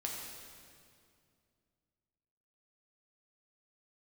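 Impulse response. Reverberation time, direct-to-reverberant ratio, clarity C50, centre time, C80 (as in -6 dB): 2.3 s, -2.0 dB, 1.0 dB, 94 ms, 2.0 dB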